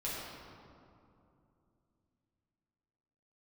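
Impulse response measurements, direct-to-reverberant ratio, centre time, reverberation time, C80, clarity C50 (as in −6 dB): −8.5 dB, 135 ms, 2.7 s, −0.5 dB, −2.0 dB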